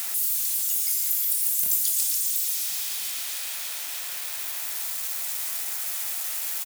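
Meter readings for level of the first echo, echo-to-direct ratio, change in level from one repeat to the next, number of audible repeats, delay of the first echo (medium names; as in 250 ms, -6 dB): -13.5 dB, -13.5 dB, -14.0 dB, 1, 1065 ms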